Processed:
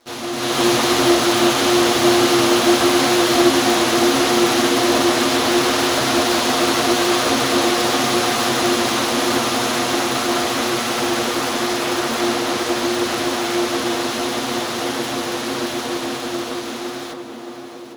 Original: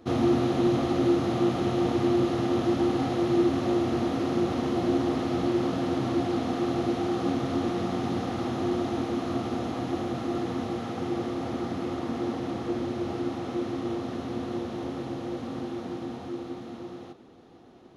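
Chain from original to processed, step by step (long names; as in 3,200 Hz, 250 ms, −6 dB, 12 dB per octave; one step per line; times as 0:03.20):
lower of the sound and its delayed copy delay 8.2 ms
spectral tilt +4.5 dB per octave
automatic gain control gain up to 15 dB
on a send: tape delay 620 ms, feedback 68%, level −4.5 dB, low-pass 1,000 Hz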